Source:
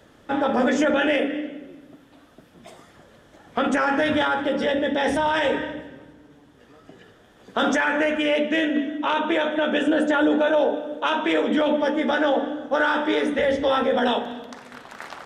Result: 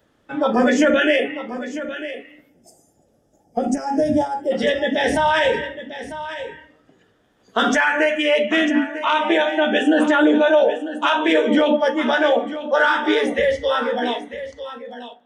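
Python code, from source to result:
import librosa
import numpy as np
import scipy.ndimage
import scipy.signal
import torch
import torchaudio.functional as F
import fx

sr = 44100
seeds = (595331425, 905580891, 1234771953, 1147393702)

y = fx.fade_out_tail(x, sr, length_s=2.1)
y = fx.noise_reduce_blind(y, sr, reduce_db=14)
y = fx.spec_box(y, sr, start_s=2.49, length_s=2.02, low_hz=900.0, high_hz=4700.0, gain_db=-21)
y = fx.dmg_tone(y, sr, hz=780.0, level_db=-35.0, at=(9.23, 10.05), fade=0.02)
y = y + 10.0 ** (-12.5 / 20.0) * np.pad(y, (int(948 * sr / 1000.0), 0))[:len(y)]
y = y * librosa.db_to_amplitude(5.0)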